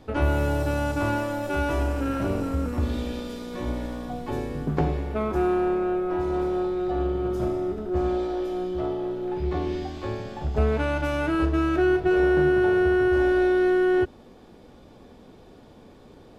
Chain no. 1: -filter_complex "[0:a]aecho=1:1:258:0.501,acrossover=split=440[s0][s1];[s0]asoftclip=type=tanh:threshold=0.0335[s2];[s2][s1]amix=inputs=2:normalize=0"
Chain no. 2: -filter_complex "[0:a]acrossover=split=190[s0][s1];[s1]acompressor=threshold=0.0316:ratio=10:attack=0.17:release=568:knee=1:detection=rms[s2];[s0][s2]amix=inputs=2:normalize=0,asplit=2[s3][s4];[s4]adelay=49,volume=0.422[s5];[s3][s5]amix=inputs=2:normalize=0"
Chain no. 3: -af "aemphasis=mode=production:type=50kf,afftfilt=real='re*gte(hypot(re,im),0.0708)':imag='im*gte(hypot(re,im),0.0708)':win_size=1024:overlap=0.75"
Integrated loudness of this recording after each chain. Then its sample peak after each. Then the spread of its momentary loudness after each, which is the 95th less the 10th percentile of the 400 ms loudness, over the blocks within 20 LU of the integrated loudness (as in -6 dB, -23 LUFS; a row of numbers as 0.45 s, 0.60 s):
-28.0 LUFS, -31.0 LUFS, -25.0 LUFS; -13.0 dBFS, -13.0 dBFS, -10.5 dBFS; 8 LU, 20 LU, 11 LU